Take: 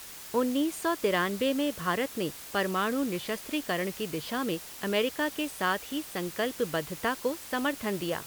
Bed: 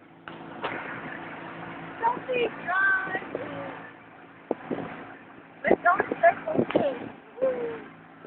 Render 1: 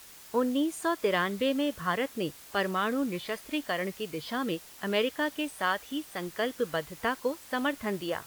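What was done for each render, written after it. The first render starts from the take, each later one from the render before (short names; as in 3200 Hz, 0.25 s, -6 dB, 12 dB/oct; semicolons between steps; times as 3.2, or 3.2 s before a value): noise print and reduce 6 dB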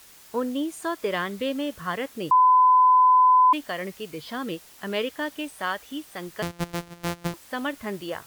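2.31–3.53 bleep 1010 Hz -13 dBFS; 6.42–7.34 sample sorter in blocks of 256 samples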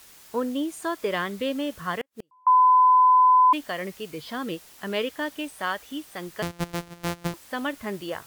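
2.01–2.47 flipped gate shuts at -23 dBFS, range -41 dB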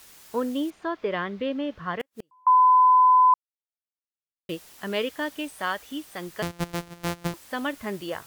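0.7–2 air absorption 250 m; 3.34–4.49 mute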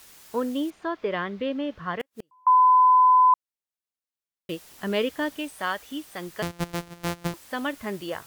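4.7–5.37 low shelf 430 Hz +5.5 dB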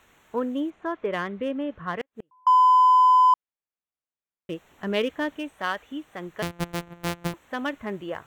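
Wiener smoothing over 9 samples; dynamic EQ 2800 Hz, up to +3 dB, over -39 dBFS, Q 1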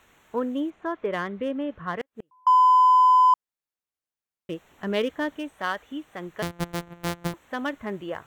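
dynamic EQ 2600 Hz, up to -4 dB, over -47 dBFS, Q 3.6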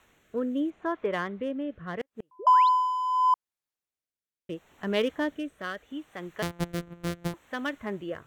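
2.39–2.69 painted sound rise 340–4600 Hz -38 dBFS; rotary speaker horn 0.75 Hz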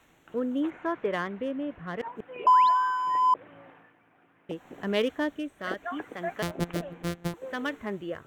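add bed -15 dB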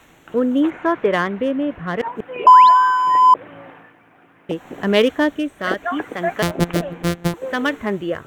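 gain +11.5 dB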